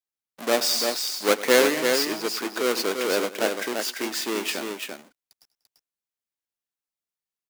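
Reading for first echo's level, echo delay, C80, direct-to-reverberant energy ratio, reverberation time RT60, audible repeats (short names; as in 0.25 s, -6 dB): -17.5 dB, 98 ms, none, none, none, 3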